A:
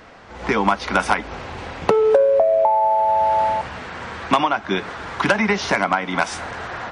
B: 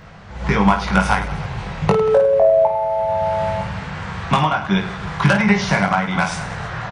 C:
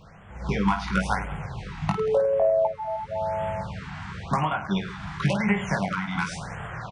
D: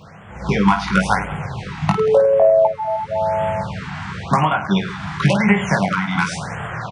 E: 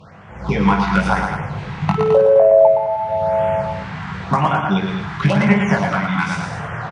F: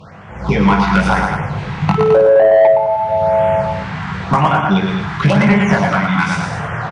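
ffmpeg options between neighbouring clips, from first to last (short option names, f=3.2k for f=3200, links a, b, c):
-filter_complex "[0:a]lowshelf=f=210:t=q:w=3:g=8.5,asplit=2[a][b];[b]aecho=0:1:20|52|103.2|185.1|316.2:0.631|0.398|0.251|0.158|0.1[c];[a][c]amix=inputs=2:normalize=0,volume=-1dB"
-af "afftfilt=real='re*(1-between(b*sr/1024,440*pow(5000/440,0.5+0.5*sin(2*PI*0.94*pts/sr))/1.41,440*pow(5000/440,0.5+0.5*sin(2*PI*0.94*pts/sr))*1.41))':imag='im*(1-between(b*sr/1024,440*pow(5000/440,0.5+0.5*sin(2*PI*0.94*pts/sr))/1.41,440*pow(5000/440,0.5+0.5*sin(2*PI*0.94*pts/sr))*1.41))':win_size=1024:overlap=0.75,volume=-8dB"
-af "highpass=86,volume=8.5dB"
-af "aemphasis=mode=reproduction:type=cd,aecho=1:1:116.6|212.8:0.562|0.355,volume=-1dB"
-af "acontrast=32,apsyclip=4.5dB,volume=-5dB"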